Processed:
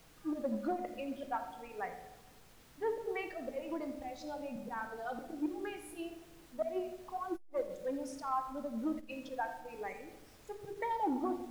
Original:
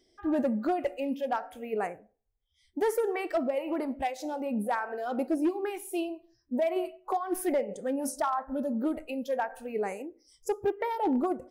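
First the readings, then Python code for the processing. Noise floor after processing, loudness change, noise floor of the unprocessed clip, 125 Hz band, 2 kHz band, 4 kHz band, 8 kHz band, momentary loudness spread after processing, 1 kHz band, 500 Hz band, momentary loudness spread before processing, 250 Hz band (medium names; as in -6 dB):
-60 dBFS, -8.5 dB, -72 dBFS, no reading, -6.5 dB, -7.0 dB, -13.0 dB, 11 LU, -6.5 dB, -9.5 dB, 7 LU, -9.0 dB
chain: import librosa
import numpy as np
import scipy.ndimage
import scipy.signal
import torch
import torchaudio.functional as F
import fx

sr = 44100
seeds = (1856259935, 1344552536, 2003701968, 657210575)

y = fx.bin_expand(x, sr, power=1.5)
y = fx.hum_notches(y, sr, base_hz=50, count=9)
y = fx.env_lowpass_down(y, sr, base_hz=1600.0, full_db=-26.5)
y = fx.peak_eq(y, sr, hz=110.0, db=-3.5, octaves=2.6)
y = fx.auto_swell(y, sr, attack_ms=119.0)
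y = fx.comb_fb(y, sr, f0_hz=150.0, decay_s=0.56, harmonics='all', damping=0.0, mix_pct=60)
y = fx.dmg_noise_colour(y, sr, seeds[0], colour='pink', level_db=-66.0)
y = y + 10.0 ** (-14.5 / 20.0) * np.pad(y, (int(85 * sr / 1000.0), 0))[:len(y)]
y = fx.room_shoebox(y, sr, seeds[1], volume_m3=970.0, walls='mixed', distance_m=0.62)
y = fx.transformer_sat(y, sr, knee_hz=260.0)
y = y * 10.0 ** (5.0 / 20.0)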